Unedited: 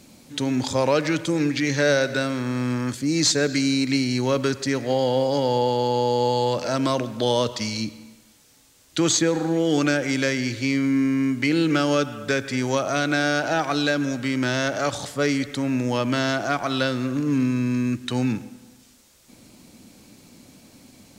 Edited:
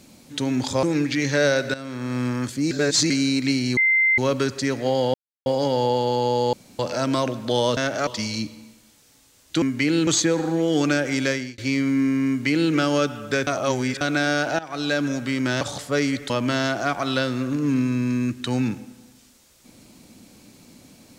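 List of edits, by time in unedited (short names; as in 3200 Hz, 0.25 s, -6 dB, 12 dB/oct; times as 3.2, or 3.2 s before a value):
0.83–1.28 cut
2.19–2.65 fade in linear, from -14 dB
3.16–3.55 reverse
4.22 add tone 2080 Hz -15 dBFS 0.41 s
5.18 insert silence 0.32 s
6.25–6.51 room tone
10.27–10.55 fade out
11.25–11.7 copy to 9.04
12.44–12.98 reverse
13.56–13.94 fade in, from -19 dB
14.58–14.88 move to 7.49
15.57–15.94 cut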